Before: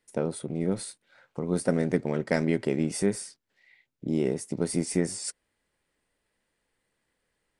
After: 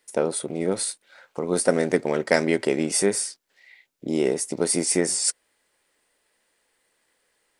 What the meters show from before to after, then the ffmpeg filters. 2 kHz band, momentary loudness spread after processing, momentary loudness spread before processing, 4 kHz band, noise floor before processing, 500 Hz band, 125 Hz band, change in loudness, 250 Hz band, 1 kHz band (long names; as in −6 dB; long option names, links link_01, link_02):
+8.0 dB, 9 LU, 11 LU, +10.5 dB, −79 dBFS, +6.0 dB, −3.0 dB, +5.5 dB, +1.5 dB, +8.0 dB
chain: -af "bass=frequency=250:gain=-14,treble=frequency=4000:gain=4,volume=8dB"